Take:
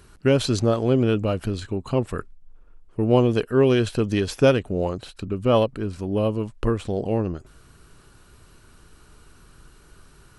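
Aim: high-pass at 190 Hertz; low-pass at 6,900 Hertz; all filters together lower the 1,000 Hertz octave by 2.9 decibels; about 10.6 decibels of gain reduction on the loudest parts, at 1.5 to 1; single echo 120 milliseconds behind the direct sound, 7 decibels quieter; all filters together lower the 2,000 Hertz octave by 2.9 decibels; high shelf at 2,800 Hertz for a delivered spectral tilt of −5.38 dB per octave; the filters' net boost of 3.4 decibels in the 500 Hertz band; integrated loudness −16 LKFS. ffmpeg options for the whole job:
ffmpeg -i in.wav -af "highpass=190,lowpass=6900,equalizer=frequency=500:width_type=o:gain=5.5,equalizer=frequency=1000:width_type=o:gain=-6,equalizer=frequency=2000:width_type=o:gain=-6,highshelf=frequency=2800:gain=7.5,acompressor=threshold=-40dB:ratio=1.5,aecho=1:1:120:0.447,volume=13.5dB" out.wav

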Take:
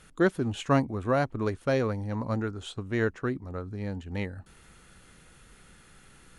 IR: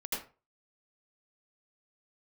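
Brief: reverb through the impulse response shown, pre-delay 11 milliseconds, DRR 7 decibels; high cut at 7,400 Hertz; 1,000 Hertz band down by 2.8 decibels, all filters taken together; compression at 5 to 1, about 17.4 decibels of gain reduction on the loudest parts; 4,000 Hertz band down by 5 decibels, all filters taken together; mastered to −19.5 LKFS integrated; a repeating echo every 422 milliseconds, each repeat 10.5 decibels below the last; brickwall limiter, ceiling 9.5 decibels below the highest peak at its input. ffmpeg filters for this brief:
-filter_complex "[0:a]lowpass=7400,equalizer=frequency=1000:width_type=o:gain=-3.5,equalizer=frequency=4000:width_type=o:gain=-6.5,acompressor=threshold=-39dB:ratio=5,alimiter=level_in=12.5dB:limit=-24dB:level=0:latency=1,volume=-12.5dB,aecho=1:1:422|844|1266:0.299|0.0896|0.0269,asplit=2[link_01][link_02];[1:a]atrim=start_sample=2205,adelay=11[link_03];[link_02][link_03]afir=irnorm=-1:irlink=0,volume=-10.5dB[link_04];[link_01][link_04]amix=inputs=2:normalize=0,volume=25.5dB"

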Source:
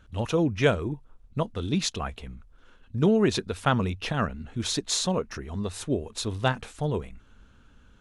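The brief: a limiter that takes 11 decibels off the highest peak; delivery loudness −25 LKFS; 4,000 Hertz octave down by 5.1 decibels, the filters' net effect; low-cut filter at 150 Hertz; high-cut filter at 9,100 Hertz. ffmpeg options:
ffmpeg -i in.wav -af "highpass=150,lowpass=9100,equalizer=frequency=4000:width_type=o:gain=-6,volume=7dB,alimiter=limit=-11.5dB:level=0:latency=1" out.wav

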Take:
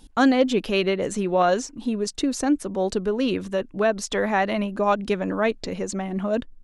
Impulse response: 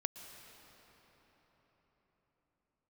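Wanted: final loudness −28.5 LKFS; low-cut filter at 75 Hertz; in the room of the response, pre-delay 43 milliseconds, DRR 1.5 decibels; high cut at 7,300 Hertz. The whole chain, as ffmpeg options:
-filter_complex "[0:a]highpass=75,lowpass=7300,asplit=2[link_01][link_02];[1:a]atrim=start_sample=2205,adelay=43[link_03];[link_02][link_03]afir=irnorm=-1:irlink=0,volume=-1dB[link_04];[link_01][link_04]amix=inputs=2:normalize=0,volume=-7dB"

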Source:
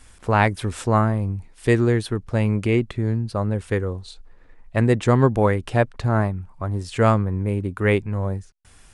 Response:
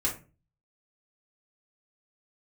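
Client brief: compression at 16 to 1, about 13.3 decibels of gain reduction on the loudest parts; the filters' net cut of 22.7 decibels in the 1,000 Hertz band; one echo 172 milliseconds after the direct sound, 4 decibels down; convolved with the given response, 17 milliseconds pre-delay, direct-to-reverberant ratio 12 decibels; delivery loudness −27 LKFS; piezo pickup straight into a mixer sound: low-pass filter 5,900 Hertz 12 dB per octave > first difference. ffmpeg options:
-filter_complex "[0:a]equalizer=frequency=1000:width_type=o:gain=-7.5,acompressor=threshold=-26dB:ratio=16,aecho=1:1:172:0.631,asplit=2[link_01][link_02];[1:a]atrim=start_sample=2205,adelay=17[link_03];[link_02][link_03]afir=irnorm=-1:irlink=0,volume=-18.5dB[link_04];[link_01][link_04]amix=inputs=2:normalize=0,lowpass=5900,aderivative,volume=23.5dB"

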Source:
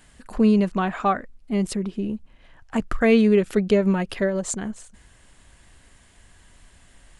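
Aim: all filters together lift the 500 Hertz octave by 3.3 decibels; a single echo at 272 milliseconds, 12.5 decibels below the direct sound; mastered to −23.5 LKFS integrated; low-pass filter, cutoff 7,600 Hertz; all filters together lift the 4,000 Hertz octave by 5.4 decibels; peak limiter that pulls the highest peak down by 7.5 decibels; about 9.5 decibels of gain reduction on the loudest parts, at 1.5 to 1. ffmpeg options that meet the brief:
ffmpeg -i in.wav -af "lowpass=7600,equalizer=frequency=500:width_type=o:gain=4,equalizer=frequency=4000:width_type=o:gain=7.5,acompressor=threshold=-38dB:ratio=1.5,alimiter=limit=-22dB:level=0:latency=1,aecho=1:1:272:0.237,volume=9dB" out.wav

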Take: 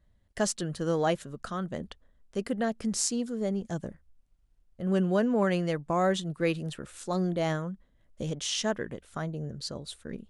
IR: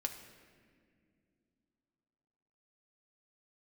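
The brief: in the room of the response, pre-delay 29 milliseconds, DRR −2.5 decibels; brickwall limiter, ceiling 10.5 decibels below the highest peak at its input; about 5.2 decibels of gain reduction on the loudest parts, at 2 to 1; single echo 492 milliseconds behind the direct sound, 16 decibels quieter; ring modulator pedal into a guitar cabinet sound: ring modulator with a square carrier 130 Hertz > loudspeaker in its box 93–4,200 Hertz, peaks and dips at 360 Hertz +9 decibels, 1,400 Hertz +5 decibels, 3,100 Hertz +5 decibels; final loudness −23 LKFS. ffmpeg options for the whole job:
-filter_complex "[0:a]acompressor=threshold=-31dB:ratio=2,alimiter=level_in=1dB:limit=-24dB:level=0:latency=1,volume=-1dB,aecho=1:1:492:0.158,asplit=2[link_01][link_02];[1:a]atrim=start_sample=2205,adelay=29[link_03];[link_02][link_03]afir=irnorm=-1:irlink=0,volume=2.5dB[link_04];[link_01][link_04]amix=inputs=2:normalize=0,aeval=exprs='val(0)*sgn(sin(2*PI*130*n/s))':channel_layout=same,highpass=93,equalizer=frequency=360:width_type=q:width=4:gain=9,equalizer=frequency=1400:width_type=q:width=4:gain=5,equalizer=frequency=3100:width_type=q:width=4:gain=5,lowpass=frequency=4200:width=0.5412,lowpass=frequency=4200:width=1.3066,volume=5.5dB"

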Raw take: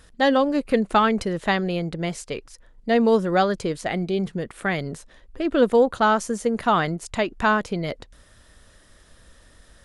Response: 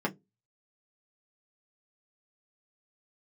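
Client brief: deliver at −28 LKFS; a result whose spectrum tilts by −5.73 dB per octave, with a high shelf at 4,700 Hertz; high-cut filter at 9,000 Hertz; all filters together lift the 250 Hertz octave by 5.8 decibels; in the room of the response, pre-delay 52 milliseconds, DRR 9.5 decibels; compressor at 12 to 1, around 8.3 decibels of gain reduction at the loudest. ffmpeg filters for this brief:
-filter_complex "[0:a]lowpass=9000,equalizer=frequency=250:width_type=o:gain=7,highshelf=frequency=4700:gain=4.5,acompressor=threshold=-18dB:ratio=12,asplit=2[link_01][link_02];[1:a]atrim=start_sample=2205,adelay=52[link_03];[link_02][link_03]afir=irnorm=-1:irlink=0,volume=-17.5dB[link_04];[link_01][link_04]amix=inputs=2:normalize=0,volume=-5dB"

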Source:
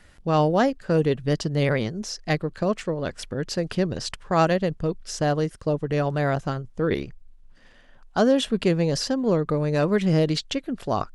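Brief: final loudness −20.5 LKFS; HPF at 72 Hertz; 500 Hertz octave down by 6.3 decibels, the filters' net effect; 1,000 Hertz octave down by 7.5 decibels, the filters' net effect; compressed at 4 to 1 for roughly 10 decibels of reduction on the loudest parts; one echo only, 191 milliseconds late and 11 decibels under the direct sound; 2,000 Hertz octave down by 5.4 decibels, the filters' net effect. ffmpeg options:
ffmpeg -i in.wav -af "highpass=72,equalizer=frequency=500:width_type=o:gain=-5.5,equalizer=frequency=1000:width_type=o:gain=-7.5,equalizer=frequency=2000:width_type=o:gain=-4,acompressor=threshold=-31dB:ratio=4,aecho=1:1:191:0.282,volume=14dB" out.wav

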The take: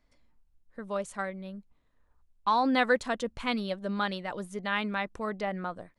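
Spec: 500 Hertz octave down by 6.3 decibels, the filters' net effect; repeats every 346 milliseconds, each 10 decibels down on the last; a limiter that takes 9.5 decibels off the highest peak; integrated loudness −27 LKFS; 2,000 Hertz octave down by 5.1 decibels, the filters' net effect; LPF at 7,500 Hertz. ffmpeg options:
ffmpeg -i in.wav -af "lowpass=7500,equalizer=frequency=500:width_type=o:gain=-7,equalizer=frequency=2000:width_type=o:gain=-6,alimiter=level_in=2dB:limit=-24dB:level=0:latency=1,volume=-2dB,aecho=1:1:346|692|1038|1384:0.316|0.101|0.0324|0.0104,volume=10dB" out.wav

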